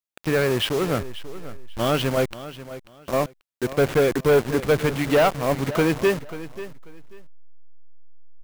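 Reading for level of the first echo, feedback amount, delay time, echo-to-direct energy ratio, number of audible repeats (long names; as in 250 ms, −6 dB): −15.0 dB, 23%, 539 ms, −15.0 dB, 2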